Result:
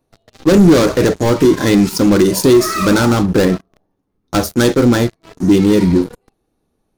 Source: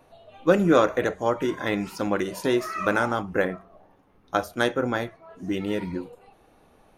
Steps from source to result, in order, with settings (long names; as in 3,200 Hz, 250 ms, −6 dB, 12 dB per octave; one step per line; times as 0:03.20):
leveller curve on the samples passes 5
flat-topped bell 1,300 Hz −9 dB 2.9 octaves
level +2.5 dB